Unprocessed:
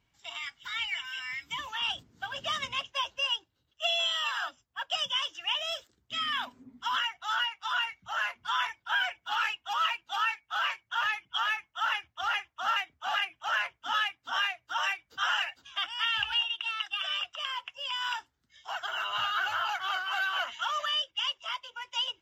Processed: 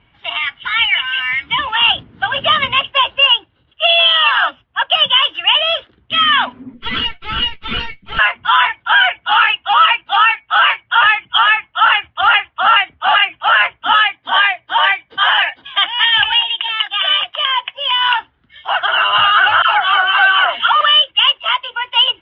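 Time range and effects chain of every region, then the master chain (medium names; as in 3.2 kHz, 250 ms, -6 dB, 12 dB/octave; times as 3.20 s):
6.74–8.19 s: comb filter that takes the minimum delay 4.5 ms + peaking EQ 910 Hz -15 dB 2.3 oct + doubling 14 ms -11 dB
14.04–18.09 s: treble shelf 8.4 kHz +8.5 dB + comb of notches 1.4 kHz
19.62–20.81 s: treble shelf 11 kHz -8.5 dB + phase dispersion lows, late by 102 ms, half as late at 870 Hz
whole clip: elliptic low-pass 3.2 kHz, stop band 80 dB; loudness maximiser +21 dB; trim -1 dB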